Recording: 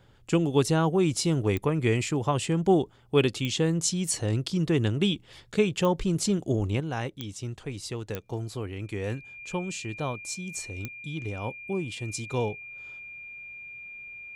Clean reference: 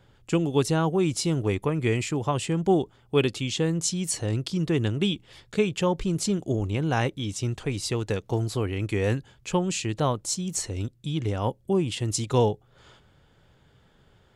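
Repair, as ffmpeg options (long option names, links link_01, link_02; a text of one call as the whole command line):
ffmpeg -i in.wav -af "adeclick=threshold=4,bandreject=frequency=2400:width=30,asetnsamples=nb_out_samples=441:pad=0,asendcmd='6.8 volume volume 7dB',volume=0dB" out.wav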